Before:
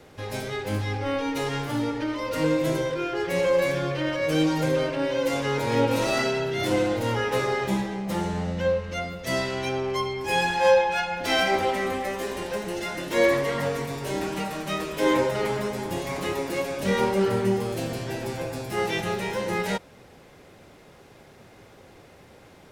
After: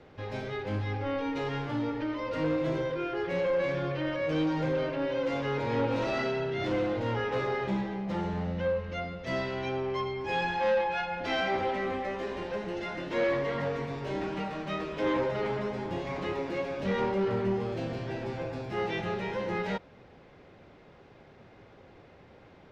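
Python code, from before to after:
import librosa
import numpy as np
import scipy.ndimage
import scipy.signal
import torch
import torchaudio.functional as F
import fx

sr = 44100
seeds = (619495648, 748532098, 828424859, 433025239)

y = 10.0 ** (-18.5 / 20.0) * np.tanh(x / 10.0 ** (-18.5 / 20.0))
y = fx.air_absorb(y, sr, metres=200.0)
y = y * 10.0 ** (-3.0 / 20.0)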